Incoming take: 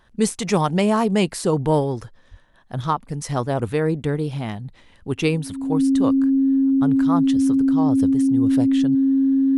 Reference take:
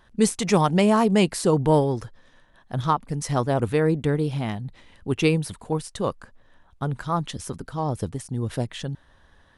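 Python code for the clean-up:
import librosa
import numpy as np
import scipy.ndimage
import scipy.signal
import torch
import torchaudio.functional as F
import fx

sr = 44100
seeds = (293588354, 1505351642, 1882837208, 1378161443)

y = fx.notch(x, sr, hz=270.0, q=30.0)
y = fx.fix_deplosive(y, sr, at_s=(2.3,))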